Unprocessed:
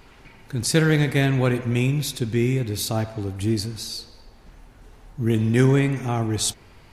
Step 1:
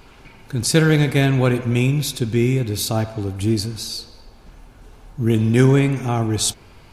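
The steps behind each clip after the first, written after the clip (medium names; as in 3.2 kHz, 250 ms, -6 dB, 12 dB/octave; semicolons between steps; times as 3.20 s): band-stop 1.9 kHz, Q 9.5; trim +3.5 dB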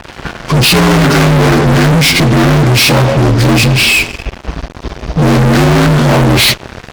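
frequency axis rescaled in octaves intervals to 80%; fuzz box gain 37 dB, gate -46 dBFS; trim +6.5 dB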